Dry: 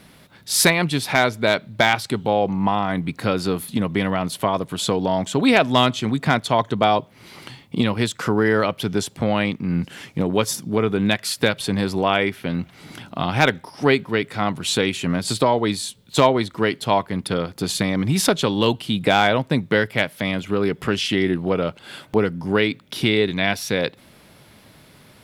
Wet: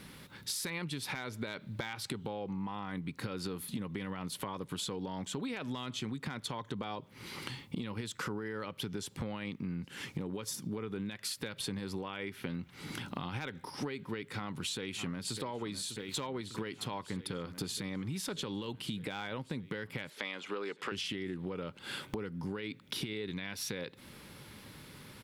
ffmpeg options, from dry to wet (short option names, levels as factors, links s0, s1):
-filter_complex "[0:a]asplit=2[s0][s1];[s1]afade=t=in:st=14.16:d=0.01,afade=t=out:st=15.36:d=0.01,aecho=0:1:600|1200|1800|2400|3000|3600|4200|4800|5400|6000|6600|7200:0.149624|0.119699|0.0957591|0.0766073|0.0612858|0.0490286|0.0392229|0.0313783|0.0251027|0.0200821|0.0160657|0.0128526[s2];[s0][s2]amix=inputs=2:normalize=0,asettb=1/sr,asplit=3[s3][s4][s5];[s3]atrim=end=20.104[s6];[s4]atrim=start=20.1:end=20.92,asetpts=PTS-STARTPTS,afade=t=in:d=0.004:c=qsin,afade=t=out:st=0.816:d=0.004:c=qsin,highpass=480,lowpass=7100[s7];[s5]atrim=start=20.916[s8];[s6][s7]acrossfade=d=0.004:c1=hsin:c2=qsin[s9];[s9][s8]acrossfade=d=0.004:c1=qsin:c2=hsin,equalizer=f=670:t=o:w=0.23:g=-14,alimiter=limit=0.2:level=0:latency=1:release=81,acompressor=threshold=0.0224:ratio=10,volume=0.794"